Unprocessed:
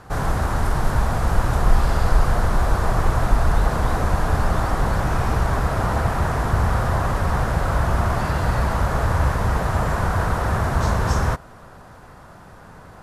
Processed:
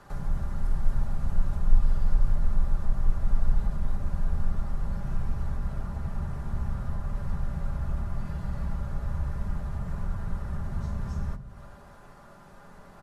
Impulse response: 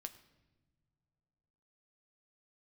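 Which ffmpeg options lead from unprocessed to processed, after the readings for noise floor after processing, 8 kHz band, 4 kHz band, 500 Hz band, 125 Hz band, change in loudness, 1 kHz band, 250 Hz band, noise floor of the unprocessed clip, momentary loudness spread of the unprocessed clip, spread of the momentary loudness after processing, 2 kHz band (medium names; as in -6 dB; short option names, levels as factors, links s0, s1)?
-50 dBFS, -21.5 dB, -21.5 dB, -20.5 dB, -11.0 dB, -11.0 dB, -22.0 dB, -11.5 dB, -44 dBFS, 2 LU, 15 LU, -22.0 dB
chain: -filter_complex "[0:a]aecho=1:1:5:0.45,acrossover=split=190[s0][s1];[s1]acompressor=threshold=0.0141:ratio=10[s2];[s0][s2]amix=inputs=2:normalize=0[s3];[1:a]atrim=start_sample=2205,asetrate=83790,aresample=44100[s4];[s3][s4]afir=irnorm=-1:irlink=0,volume=1.26"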